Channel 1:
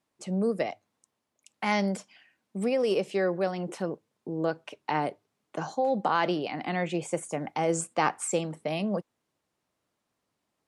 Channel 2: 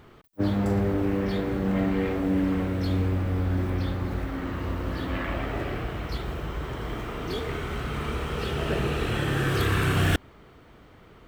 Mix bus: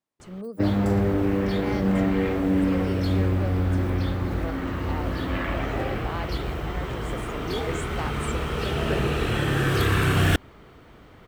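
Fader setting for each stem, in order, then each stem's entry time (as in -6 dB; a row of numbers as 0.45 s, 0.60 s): -9.0 dB, +2.5 dB; 0.00 s, 0.20 s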